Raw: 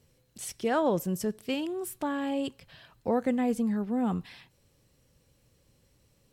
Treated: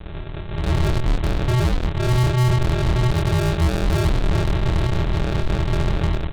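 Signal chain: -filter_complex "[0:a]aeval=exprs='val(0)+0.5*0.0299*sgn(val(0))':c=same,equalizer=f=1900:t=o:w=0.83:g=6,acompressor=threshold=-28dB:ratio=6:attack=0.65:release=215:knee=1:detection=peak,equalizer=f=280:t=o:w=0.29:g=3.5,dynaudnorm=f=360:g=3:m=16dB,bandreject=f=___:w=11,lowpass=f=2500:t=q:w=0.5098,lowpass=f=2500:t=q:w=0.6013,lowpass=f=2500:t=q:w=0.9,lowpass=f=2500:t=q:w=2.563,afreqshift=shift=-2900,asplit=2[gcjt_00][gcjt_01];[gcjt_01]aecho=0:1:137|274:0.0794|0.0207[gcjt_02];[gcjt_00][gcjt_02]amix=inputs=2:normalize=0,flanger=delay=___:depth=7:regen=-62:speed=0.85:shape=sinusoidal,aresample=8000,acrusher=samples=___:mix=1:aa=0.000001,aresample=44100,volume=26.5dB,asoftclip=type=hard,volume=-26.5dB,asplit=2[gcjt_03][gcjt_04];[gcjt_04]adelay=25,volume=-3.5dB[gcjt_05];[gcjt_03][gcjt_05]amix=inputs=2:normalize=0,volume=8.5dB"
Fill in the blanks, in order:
1400, 3.6, 32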